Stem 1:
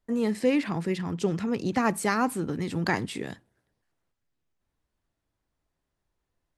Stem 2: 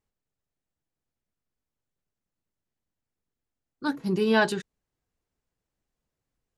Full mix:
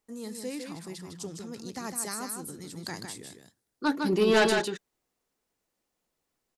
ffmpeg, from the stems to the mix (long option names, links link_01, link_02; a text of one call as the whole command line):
ffmpeg -i stem1.wav -i stem2.wav -filter_complex "[0:a]aexciter=amount=6:drive=3.7:freq=3900,volume=-13.5dB,asplit=2[link_01][link_02];[link_02]volume=-6dB[link_03];[1:a]highpass=250,bandreject=frequency=1600:width=19,aeval=exprs='0.316*(cos(1*acos(clip(val(0)/0.316,-1,1)))-cos(1*PI/2))+0.126*(cos(5*acos(clip(val(0)/0.316,-1,1)))-cos(5*PI/2))':channel_layout=same,volume=-5.5dB,asplit=2[link_04][link_05];[link_05]volume=-4.5dB[link_06];[link_03][link_06]amix=inputs=2:normalize=0,aecho=0:1:155:1[link_07];[link_01][link_04][link_07]amix=inputs=3:normalize=0" out.wav